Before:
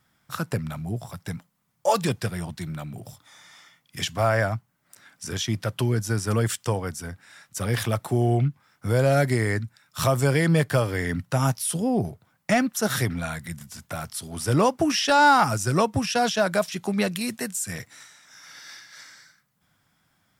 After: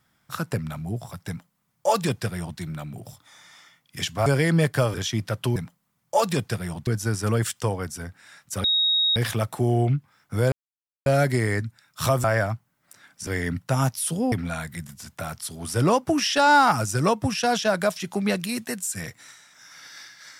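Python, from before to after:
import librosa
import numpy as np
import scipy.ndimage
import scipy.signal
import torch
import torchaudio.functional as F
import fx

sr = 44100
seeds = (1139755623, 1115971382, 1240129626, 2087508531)

y = fx.edit(x, sr, fx.duplicate(start_s=1.28, length_s=1.31, to_s=5.91),
    fx.swap(start_s=4.26, length_s=1.03, other_s=10.22, other_length_s=0.68),
    fx.insert_tone(at_s=7.68, length_s=0.52, hz=3770.0, db=-18.0),
    fx.insert_silence(at_s=9.04, length_s=0.54),
    fx.cut(start_s=11.95, length_s=1.09), tone=tone)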